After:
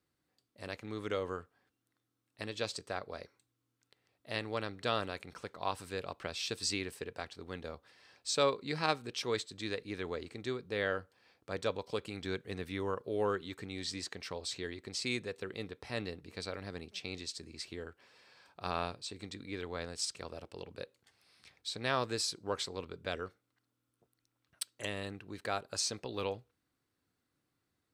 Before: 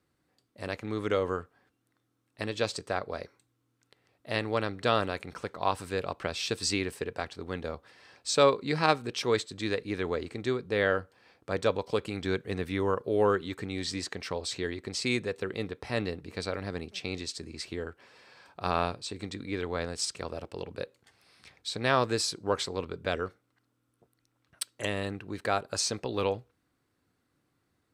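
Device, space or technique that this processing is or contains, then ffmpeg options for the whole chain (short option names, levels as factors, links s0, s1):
presence and air boost: -af "equalizer=f=4100:t=o:w=1.8:g=3.5,highshelf=f=11000:g=6.5,volume=0.398"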